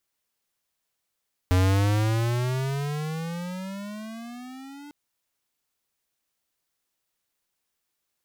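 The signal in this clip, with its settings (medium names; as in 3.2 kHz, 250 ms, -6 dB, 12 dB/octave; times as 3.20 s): gliding synth tone square, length 3.40 s, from 90.2 Hz, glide +20.5 st, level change -24 dB, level -19 dB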